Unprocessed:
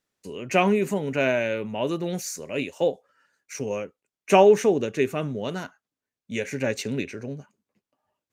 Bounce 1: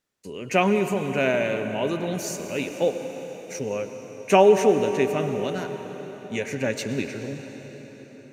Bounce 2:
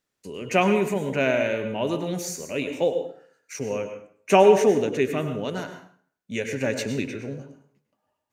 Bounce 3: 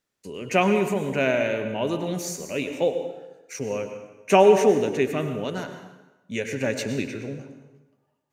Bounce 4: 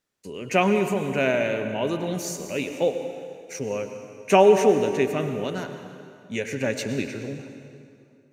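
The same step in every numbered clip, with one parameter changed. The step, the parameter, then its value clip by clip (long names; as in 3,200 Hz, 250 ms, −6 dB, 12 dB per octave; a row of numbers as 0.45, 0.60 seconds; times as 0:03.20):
dense smooth reverb, RT60: 5.2, 0.54, 1.1, 2.4 seconds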